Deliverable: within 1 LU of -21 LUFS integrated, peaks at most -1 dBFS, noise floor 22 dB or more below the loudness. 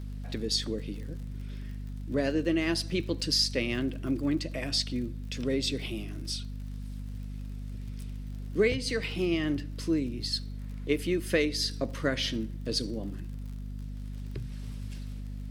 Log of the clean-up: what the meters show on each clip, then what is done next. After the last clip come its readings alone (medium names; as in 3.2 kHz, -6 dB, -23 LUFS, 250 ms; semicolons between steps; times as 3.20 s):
tick rate 49 per s; hum 50 Hz; highest harmonic 250 Hz; hum level -35 dBFS; loudness -32.0 LUFS; peak level -12.5 dBFS; loudness target -21.0 LUFS
-> de-click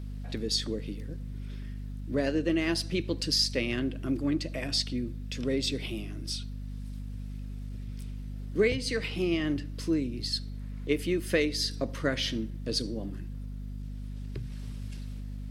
tick rate 0 per s; hum 50 Hz; highest harmonic 250 Hz; hum level -35 dBFS
-> de-hum 50 Hz, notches 5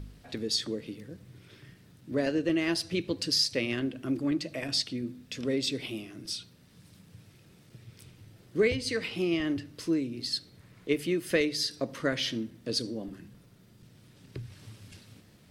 hum not found; loudness -30.5 LUFS; peak level -12.5 dBFS; loudness target -21.0 LUFS
-> trim +9.5 dB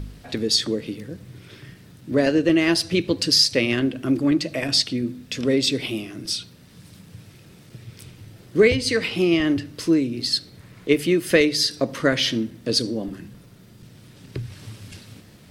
loudness -21.0 LUFS; peak level -3.0 dBFS; noise floor -49 dBFS